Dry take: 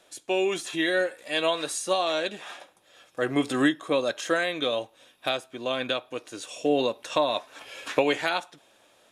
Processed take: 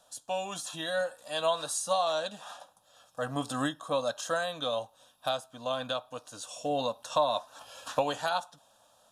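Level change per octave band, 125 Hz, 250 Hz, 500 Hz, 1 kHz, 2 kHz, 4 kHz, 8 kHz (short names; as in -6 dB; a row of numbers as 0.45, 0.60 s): -2.0, -10.5, -5.0, -1.0, -9.0, -5.0, -1.0 dB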